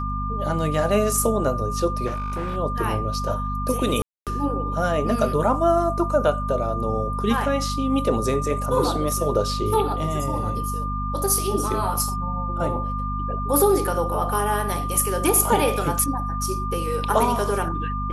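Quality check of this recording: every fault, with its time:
mains hum 50 Hz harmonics 5 −28 dBFS
whistle 1,200 Hz −28 dBFS
0:02.06–0:02.57: clipping −23.5 dBFS
0:04.02–0:04.27: drop-out 247 ms

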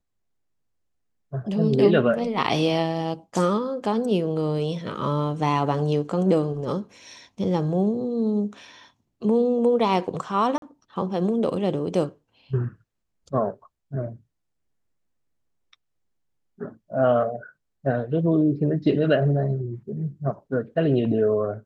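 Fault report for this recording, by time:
0:10.58–0:10.62: drop-out 42 ms

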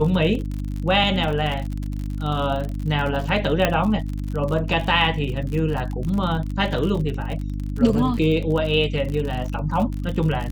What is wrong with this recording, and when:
surface crackle 54 per second −27 dBFS
mains hum 50 Hz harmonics 6 −27 dBFS
0:03.65: click −4 dBFS

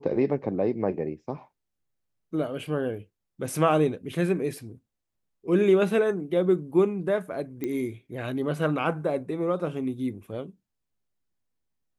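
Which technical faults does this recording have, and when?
0:07.64: click −18 dBFS

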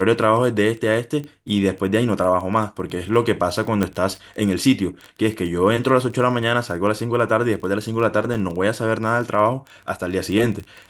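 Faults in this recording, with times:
surface crackle 17 per second −27 dBFS
0:03.83: click −7 dBFS
0:08.34–0:08.35: drop-out 6.5 ms

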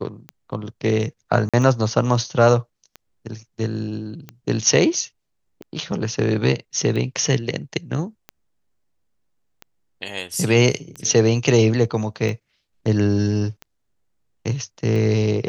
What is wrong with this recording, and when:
scratch tick 45 rpm −19 dBFS
0:01.49–0:01.54: drop-out 46 ms

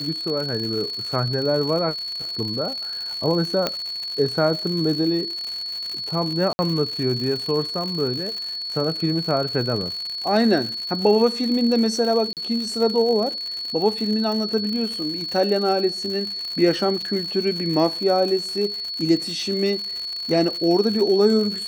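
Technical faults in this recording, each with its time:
surface crackle 130 per second −27 dBFS
whistle 4,400 Hz −27 dBFS
0:03.67: click −7 dBFS
0:06.53–0:06.59: drop-out 60 ms
0:12.33–0:12.37: drop-out 38 ms
0:17.02: drop-out 5 ms

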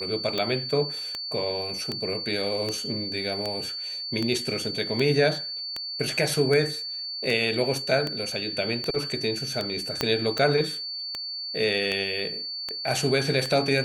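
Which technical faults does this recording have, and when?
scratch tick 78 rpm −14 dBFS
whistle 4,500 Hz −31 dBFS
0:10.01: click −8 dBFS

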